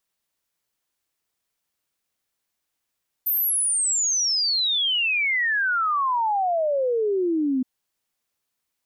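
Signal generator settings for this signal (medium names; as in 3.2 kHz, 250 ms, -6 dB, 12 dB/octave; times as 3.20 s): log sweep 14 kHz -> 250 Hz 4.37 s -19.5 dBFS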